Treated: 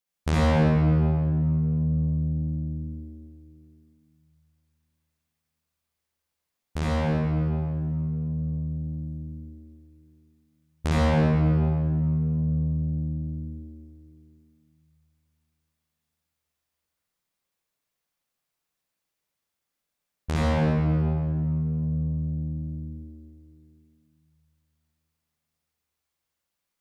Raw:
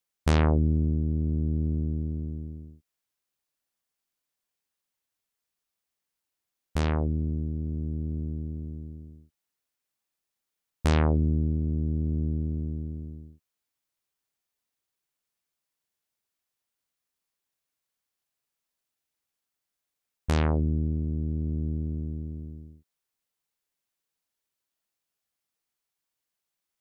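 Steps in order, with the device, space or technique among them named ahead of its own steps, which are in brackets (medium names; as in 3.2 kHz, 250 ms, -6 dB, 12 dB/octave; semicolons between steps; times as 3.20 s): stairwell (reverberation RT60 2.7 s, pre-delay 51 ms, DRR -7 dB); trim -3.5 dB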